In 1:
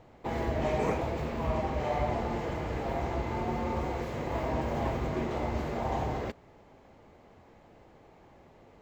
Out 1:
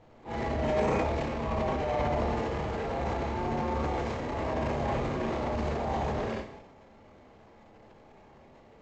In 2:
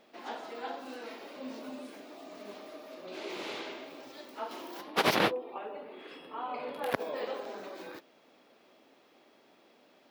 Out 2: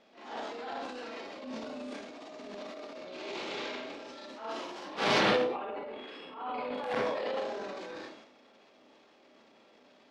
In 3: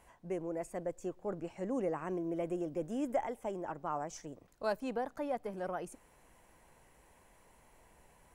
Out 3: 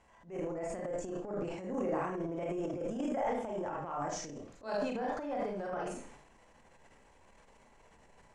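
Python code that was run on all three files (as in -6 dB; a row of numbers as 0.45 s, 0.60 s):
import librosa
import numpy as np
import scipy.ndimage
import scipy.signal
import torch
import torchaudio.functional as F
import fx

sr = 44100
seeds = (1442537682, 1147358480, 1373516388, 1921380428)

y = fx.rev_schroeder(x, sr, rt60_s=0.39, comb_ms=28, drr_db=-2.0)
y = fx.transient(y, sr, attack_db=-10, sustain_db=9)
y = scipy.signal.sosfilt(scipy.signal.butter(4, 7400.0, 'lowpass', fs=sr, output='sos'), y)
y = F.gain(torch.from_numpy(y), -2.5).numpy()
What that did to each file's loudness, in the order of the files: +1.5 LU, +1.5 LU, +1.0 LU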